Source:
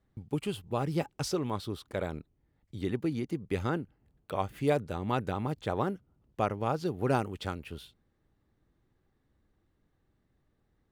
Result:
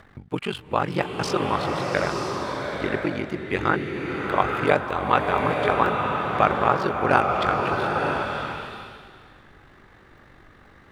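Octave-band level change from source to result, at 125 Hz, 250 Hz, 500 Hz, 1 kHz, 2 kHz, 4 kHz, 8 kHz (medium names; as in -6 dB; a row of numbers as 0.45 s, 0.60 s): +4.0 dB, +5.5 dB, +9.0 dB, +14.5 dB, +17.5 dB, +10.5 dB, no reading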